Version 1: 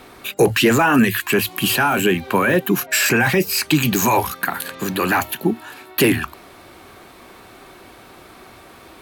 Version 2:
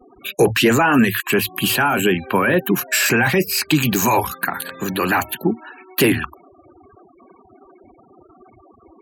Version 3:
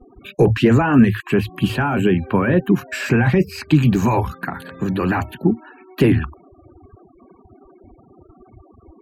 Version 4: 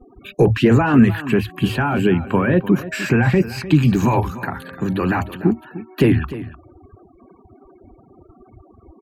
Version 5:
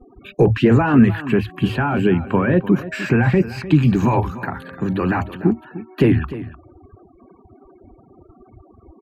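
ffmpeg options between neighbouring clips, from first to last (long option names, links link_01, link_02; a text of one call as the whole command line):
ffmpeg -i in.wav -af "afftfilt=real='re*gte(hypot(re,im),0.0224)':imag='im*gte(hypot(re,im),0.0224)':win_size=1024:overlap=0.75" out.wav
ffmpeg -i in.wav -af "aemphasis=mode=reproduction:type=riaa,volume=-4dB" out.wav
ffmpeg -i in.wav -af "aecho=1:1:301:0.178" out.wav
ffmpeg -i in.wav -af "highshelf=frequency=5200:gain=-11.5" out.wav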